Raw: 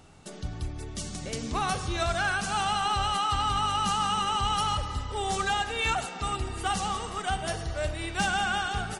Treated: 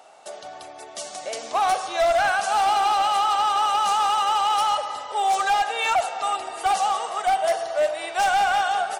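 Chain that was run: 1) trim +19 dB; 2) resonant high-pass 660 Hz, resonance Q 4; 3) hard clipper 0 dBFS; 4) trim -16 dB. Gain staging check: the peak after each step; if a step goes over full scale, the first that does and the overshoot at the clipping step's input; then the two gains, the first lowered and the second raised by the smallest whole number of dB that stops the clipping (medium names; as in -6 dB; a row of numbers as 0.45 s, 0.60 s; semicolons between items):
+0.5 dBFS, +9.5 dBFS, 0.0 dBFS, -16.0 dBFS; step 1, 9.5 dB; step 1 +9 dB, step 4 -6 dB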